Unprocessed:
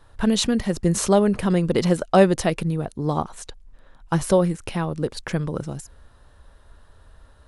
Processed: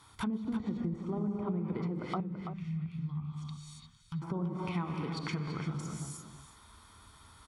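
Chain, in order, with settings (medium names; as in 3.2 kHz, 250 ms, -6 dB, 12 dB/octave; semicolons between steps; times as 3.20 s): high-pass 110 Hz 12 dB/octave; treble shelf 2.1 kHz +11.5 dB; comb 0.9 ms, depth 76%; gated-style reverb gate 380 ms flat, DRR 3.5 dB; peak limiter -7 dBFS, peak gain reduction 7 dB; low-pass that closes with the level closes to 630 Hz, closed at -13.5 dBFS; compression 2:1, threshold -34 dBFS, peak gain reduction 11.5 dB; 2.20–4.22 s: FFT filter 170 Hz 0 dB, 280 Hz -21 dB, 660 Hz -28 dB, 1.1 kHz -16 dB, 3.2 kHz -6 dB, 6.9 kHz -11 dB; echo from a far wall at 57 m, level -8 dB; trim -6 dB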